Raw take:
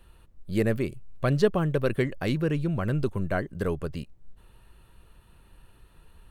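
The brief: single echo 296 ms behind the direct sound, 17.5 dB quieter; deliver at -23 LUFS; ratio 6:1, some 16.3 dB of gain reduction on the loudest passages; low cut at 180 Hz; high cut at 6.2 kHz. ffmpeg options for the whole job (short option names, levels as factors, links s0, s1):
-af "highpass=180,lowpass=6200,acompressor=threshold=0.0178:ratio=6,aecho=1:1:296:0.133,volume=7.08"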